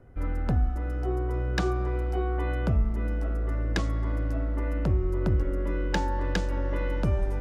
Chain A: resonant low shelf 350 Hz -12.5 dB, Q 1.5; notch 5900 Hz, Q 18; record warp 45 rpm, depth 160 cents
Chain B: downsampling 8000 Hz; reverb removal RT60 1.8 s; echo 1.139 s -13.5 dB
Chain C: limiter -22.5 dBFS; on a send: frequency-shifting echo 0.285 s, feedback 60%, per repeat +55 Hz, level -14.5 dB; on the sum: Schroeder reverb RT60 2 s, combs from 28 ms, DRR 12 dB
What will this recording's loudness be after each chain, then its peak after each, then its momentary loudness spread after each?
-35.0, -32.5, -32.0 LUFS; -12.5, -15.5, -20.0 dBFS; 7, 7, 1 LU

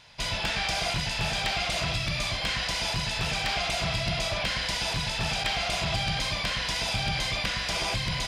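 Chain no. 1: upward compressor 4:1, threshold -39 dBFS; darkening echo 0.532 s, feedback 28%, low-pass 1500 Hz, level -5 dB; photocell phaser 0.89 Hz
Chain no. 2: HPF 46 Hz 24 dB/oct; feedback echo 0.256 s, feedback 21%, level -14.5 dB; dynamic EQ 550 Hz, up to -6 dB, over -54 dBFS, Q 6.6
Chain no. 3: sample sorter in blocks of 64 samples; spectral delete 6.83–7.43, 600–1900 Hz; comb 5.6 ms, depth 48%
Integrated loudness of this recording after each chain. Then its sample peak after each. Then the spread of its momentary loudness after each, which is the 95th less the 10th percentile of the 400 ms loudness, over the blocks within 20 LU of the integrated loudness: -31.0, -27.5, -27.5 LUFS; -16.0, -14.0, -14.5 dBFS; 2, 1, 2 LU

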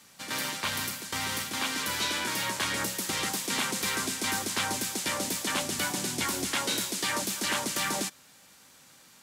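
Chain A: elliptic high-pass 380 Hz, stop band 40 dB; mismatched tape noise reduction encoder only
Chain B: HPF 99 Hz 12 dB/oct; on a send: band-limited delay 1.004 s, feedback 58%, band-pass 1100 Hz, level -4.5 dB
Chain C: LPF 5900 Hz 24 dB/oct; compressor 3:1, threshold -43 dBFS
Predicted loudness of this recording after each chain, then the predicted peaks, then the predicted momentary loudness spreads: -30.5, -29.0, -41.5 LUFS; -17.0, -15.5, -25.0 dBFS; 5, 6, 5 LU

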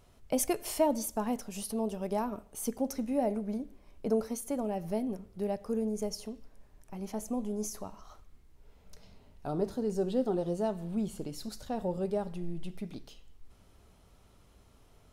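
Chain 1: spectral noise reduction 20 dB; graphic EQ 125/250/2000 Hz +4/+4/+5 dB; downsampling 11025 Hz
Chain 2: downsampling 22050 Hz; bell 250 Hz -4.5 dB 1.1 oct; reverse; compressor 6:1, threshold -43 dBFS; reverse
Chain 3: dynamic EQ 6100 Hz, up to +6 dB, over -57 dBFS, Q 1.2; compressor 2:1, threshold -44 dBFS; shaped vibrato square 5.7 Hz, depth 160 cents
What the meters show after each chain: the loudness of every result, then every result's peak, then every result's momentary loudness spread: -32.5, -47.5, -42.5 LUFS; -14.0, -32.0, -24.5 dBFS; 12, 18, 17 LU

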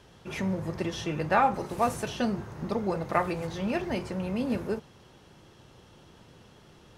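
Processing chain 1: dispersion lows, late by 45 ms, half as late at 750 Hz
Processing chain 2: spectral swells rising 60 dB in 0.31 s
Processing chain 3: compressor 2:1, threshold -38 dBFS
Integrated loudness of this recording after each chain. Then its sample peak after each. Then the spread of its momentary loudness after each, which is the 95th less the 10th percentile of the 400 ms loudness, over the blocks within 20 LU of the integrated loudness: -30.0, -29.0, -37.5 LUFS; -10.5, -7.5, -17.0 dBFS; 9, 8, 19 LU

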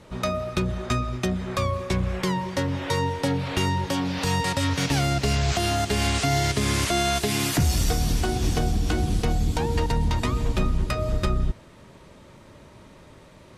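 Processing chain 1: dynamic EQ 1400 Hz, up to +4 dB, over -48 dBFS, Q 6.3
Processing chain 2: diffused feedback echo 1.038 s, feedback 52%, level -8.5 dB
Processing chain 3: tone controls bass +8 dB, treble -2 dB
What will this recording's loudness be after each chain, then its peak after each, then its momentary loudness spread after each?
-24.5, -24.5, -20.0 LUFS; -12.0, -10.0, -5.5 dBFS; 5, 11, 4 LU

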